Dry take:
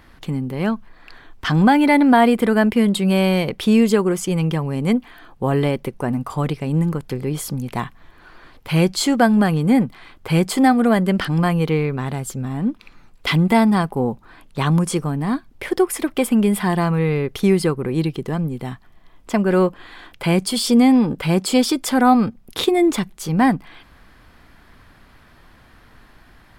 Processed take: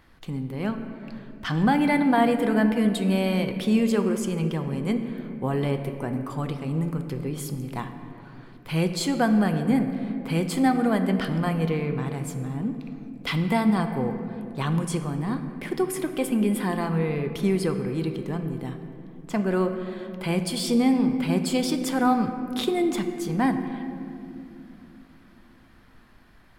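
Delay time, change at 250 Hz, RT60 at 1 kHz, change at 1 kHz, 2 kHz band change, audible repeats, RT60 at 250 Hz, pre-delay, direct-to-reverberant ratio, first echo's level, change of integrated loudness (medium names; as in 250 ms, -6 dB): no echo, -6.0 dB, 2.2 s, -7.5 dB, -7.0 dB, no echo, 4.4 s, 6 ms, 6.5 dB, no echo, -6.5 dB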